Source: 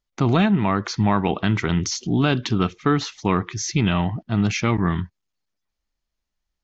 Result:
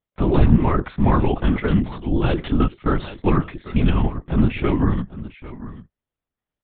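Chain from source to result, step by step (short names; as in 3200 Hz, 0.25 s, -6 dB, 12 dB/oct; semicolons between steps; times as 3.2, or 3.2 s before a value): HPF 200 Hz 12 dB/oct; tilt -2.5 dB/oct; comb 5.5 ms, depth 80%; echo 0.798 s -16 dB; LPC vocoder at 8 kHz whisper; gain -2 dB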